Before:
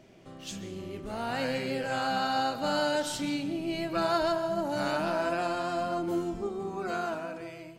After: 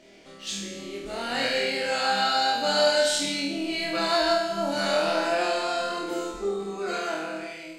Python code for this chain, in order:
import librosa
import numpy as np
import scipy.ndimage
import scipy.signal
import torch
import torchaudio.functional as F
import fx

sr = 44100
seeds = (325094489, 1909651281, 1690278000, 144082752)

y = fx.graphic_eq_10(x, sr, hz=(125, 250, 500, 2000, 4000, 8000), db=(-11, 4, 5, 7, 9, 8))
y = fx.room_flutter(y, sr, wall_m=4.3, rt60_s=0.73)
y = y * librosa.db_to_amplitude(-4.0)